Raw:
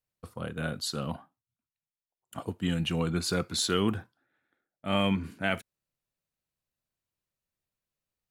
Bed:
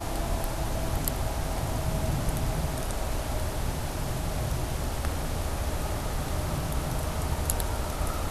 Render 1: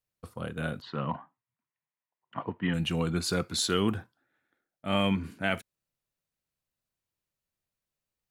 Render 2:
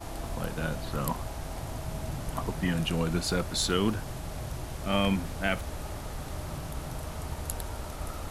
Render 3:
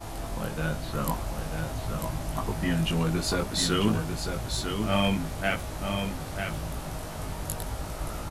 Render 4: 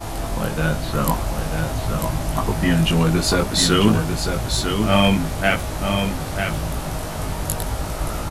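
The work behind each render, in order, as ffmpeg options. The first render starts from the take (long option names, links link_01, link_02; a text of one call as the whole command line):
ffmpeg -i in.wav -filter_complex "[0:a]asplit=3[link_01][link_02][link_03];[link_01]afade=type=out:start_time=0.8:duration=0.02[link_04];[link_02]highpass=120,equalizer=frequency=140:width_type=q:width=4:gain=4,equalizer=frequency=1000:width_type=q:width=4:gain=10,equalizer=frequency=1900:width_type=q:width=4:gain=8,lowpass=frequency=2900:width=0.5412,lowpass=frequency=2900:width=1.3066,afade=type=in:start_time=0.8:duration=0.02,afade=type=out:start_time=2.73:duration=0.02[link_05];[link_03]afade=type=in:start_time=2.73:duration=0.02[link_06];[link_04][link_05][link_06]amix=inputs=3:normalize=0" out.wav
ffmpeg -i in.wav -i bed.wav -filter_complex "[1:a]volume=-7dB[link_01];[0:a][link_01]amix=inputs=2:normalize=0" out.wav
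ffmpeg -i in.wav -filter_complex "[0:a]asplit=2[link_01][link_02];[link_02]adelay=19,volume=-3.5dB[link_03];[link_01][link_03]amix=inputs=2:normalize=0,asplit=2[link_04][link_05];[link_05]aecho=0:1:945:0.501[link_06];[link_04][link_06]amix=inputs=2:normalize=0" out.wav
ffmpeg -i in.wav -af "volume=9dB" out.wav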